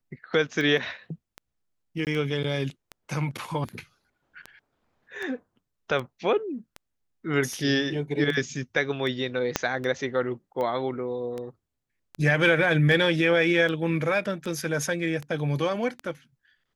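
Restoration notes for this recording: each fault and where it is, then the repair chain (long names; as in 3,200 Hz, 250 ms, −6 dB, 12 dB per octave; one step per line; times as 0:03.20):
scratch tick 78 rpm −21 dBFS
0:02.05–0:02.07: drop-out 18 ms
0:09.56: click −6 dBFS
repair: click removal
repair the gap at 0:02.05, 18 ms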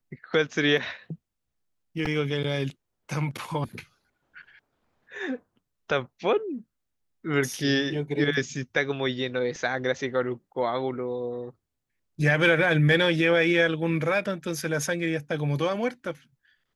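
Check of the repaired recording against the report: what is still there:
0:09.56: click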